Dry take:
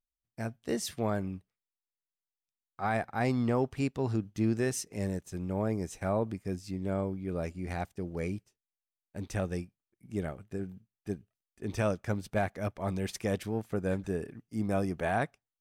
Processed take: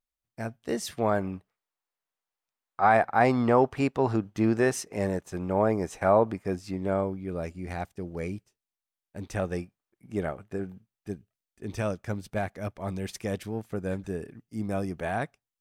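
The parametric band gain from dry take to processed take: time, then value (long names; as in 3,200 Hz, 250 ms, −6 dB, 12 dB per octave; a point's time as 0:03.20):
parametric band 910 Hz 2.9 octaves
0:00.82 +4 dB
0:01.30 +12 dB
0:06.74 +12 dB
0:07.35 +2 dB
0:09.20 +2 dB
0:09.61 +8.5 dB
0:10.73 +8.5 dB
0:11.13 −0.5 dB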